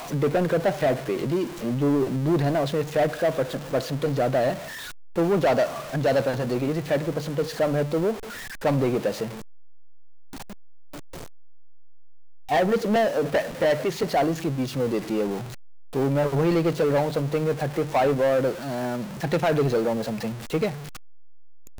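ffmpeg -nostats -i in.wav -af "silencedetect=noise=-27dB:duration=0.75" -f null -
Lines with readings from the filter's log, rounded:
silence_start: 9.26
silence_end: 12.50 | silence_duration: 3.25
silence_start: 20.69
silence_end: 21.79 | silence_duration: 1.10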